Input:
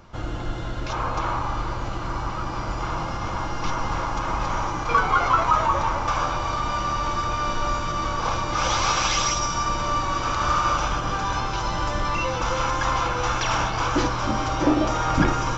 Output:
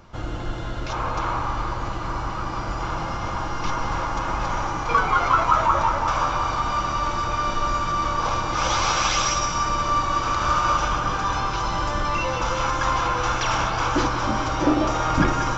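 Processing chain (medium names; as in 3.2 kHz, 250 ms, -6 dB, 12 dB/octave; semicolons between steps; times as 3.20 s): band-passed feedback delay 182 ms, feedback 70%, band-pass 1.2 kHz, level -7 dB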